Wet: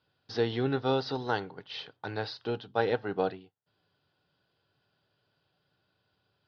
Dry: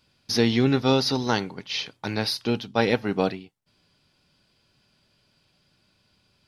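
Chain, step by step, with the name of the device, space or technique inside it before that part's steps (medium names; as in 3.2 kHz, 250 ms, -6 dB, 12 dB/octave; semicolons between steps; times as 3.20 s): guitar cabinet (cabinet simulation 96–4000 Hz, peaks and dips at 99 Hz +4 dB, 220 Hz -9 dB, 450 Hz +5 dB, 760 Hz +5 dB, 1.5 kHz +5 dB, 2.3 kHz -9 dB); trim -8 dB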